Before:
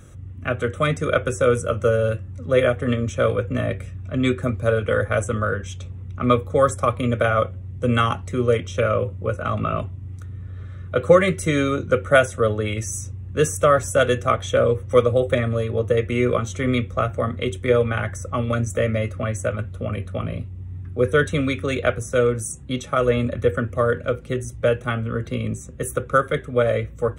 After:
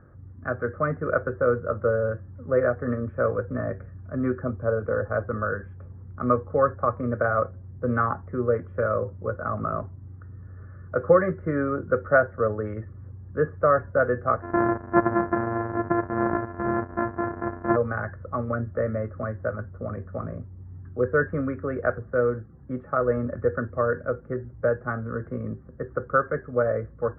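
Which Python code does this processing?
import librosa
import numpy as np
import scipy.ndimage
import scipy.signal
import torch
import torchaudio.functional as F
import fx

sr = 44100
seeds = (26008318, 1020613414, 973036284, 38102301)

y = fx.dynamic_eq(x, sr, hz=1900.0, q=1.6, threshold_db=-41.0, ratio=4.0, max_db=-8, at=(4.37, 5.15))
y = fx.sample_sort(y, sr, block=128, at=(14.41, 17.75), fade=0.02)
y = scipy.signal.sosfilt(scipy.signal.cheby1(5, 1.0, 1700.0, 'lowpass', fs=sr, output='sos'), y)
y = fx.low_shelf(y, sr, hz=150.0, db=-7.5)
y = y * librosa.db_to_amplitude(-2.5)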